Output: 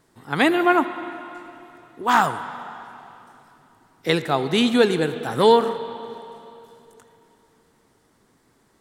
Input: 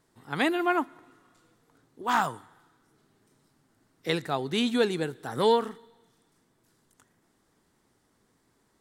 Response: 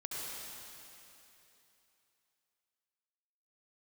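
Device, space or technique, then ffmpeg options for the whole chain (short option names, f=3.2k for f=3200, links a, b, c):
filtered reverb send: -filter_complex "[0:a]asplit=2[a][b];[b]highpass=f=160:p=1,lowpass=3.8k[c];[1:a]atrim=start_sample=2205[d];[c][d]afir=irnorm=-1:irlink=0,volume=-10.5dB[e];[a][e]amix=inputs=2:normalize=0,volume=6.5dB"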